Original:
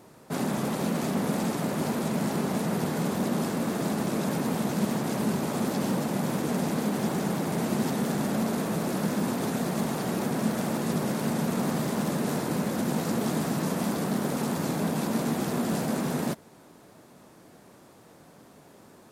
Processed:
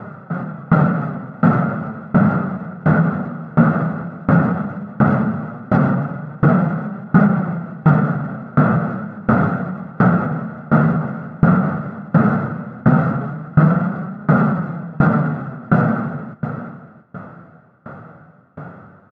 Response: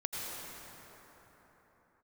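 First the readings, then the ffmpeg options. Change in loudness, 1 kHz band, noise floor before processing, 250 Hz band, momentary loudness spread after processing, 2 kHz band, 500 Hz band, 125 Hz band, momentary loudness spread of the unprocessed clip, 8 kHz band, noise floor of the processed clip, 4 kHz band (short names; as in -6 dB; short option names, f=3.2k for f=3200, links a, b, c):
+10.5 dB, +10.5 dB, -54 dBFS, +9.5 dB, 12 LU, +11.0 dB, +6.0 dB, +15.0 dB, 1 LU, under -25 dB, -45 dBFS, under -10 dB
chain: -filter_complex "[0:a]highpass=f=90:w=0.5412,highpass=f=90:w=1.3066,equalizer=f=130:w=0.56:g=14,aecho=1:1:1.5:0.49,asplit=2[a][b];[b]acompressor=threshold=-25dB:ratio=6,volume=2dB[c];[a][c]amix=inputs=2:normalize=0,flanger=delay=4.7:depth=8.3:regen=56:speed=0.14:shape=triangular,lowpass=f=1.4k:t=q:w=5.5,asplit=2[d][e];[e]aecho=0:1:369|684:0.168|0.188[f];[d][f]amix=inputs=2:normalize=0,alimiter=level_in=10.5dB:limit=-1dB:release=50:level=0:latency=1,aeval=exprs='val(0)*pow(10,-27*if(lt(mod(1.4*n/s,1),2*abs(1.4)/1000),1-mod(1.4*n/s,1)/(2*abs(1.4)/1000),(mod(1.4*n/s,1)-2*abs(1.4)/1000)/(1-2*abs(1.4)/1000))/20)':c=same"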